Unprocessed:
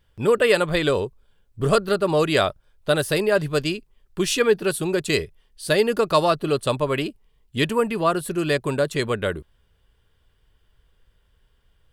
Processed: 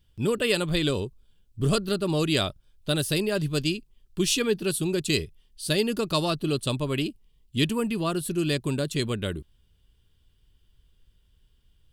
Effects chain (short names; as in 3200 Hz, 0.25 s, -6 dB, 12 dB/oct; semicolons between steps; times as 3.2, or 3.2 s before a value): band shelf 960 Hz -10 dB 2.6 oct